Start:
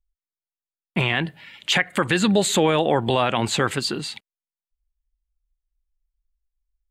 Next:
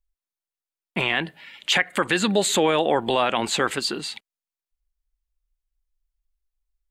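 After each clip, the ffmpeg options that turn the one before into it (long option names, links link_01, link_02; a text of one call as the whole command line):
ffmpeg -i in.wav -af "equalizer=frequency=110:width_type=o:width=1.3:gain=-13" out.wav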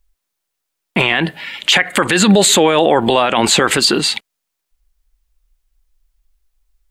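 ffmpeg -i in.wav -af "alimiter=level_in=16.5dB:limit=-1dB:release=50:level=0:latency=1,volume=-1dB" out.wav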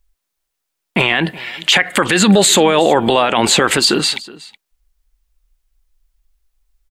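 ffmpeg -i in.wav -af "aecho=1:1:370:0.0944" out.wav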